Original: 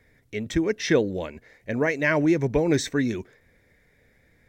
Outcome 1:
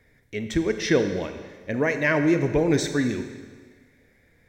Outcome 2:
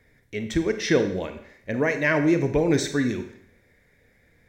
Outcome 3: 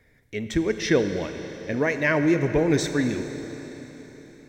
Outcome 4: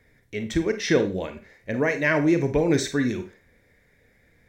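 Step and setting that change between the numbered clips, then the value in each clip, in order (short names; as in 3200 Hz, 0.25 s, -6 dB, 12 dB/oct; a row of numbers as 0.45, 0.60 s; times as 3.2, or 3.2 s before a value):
Schroeder reverb, RT60: 1.5, 0.64, 4.2, 0.31 s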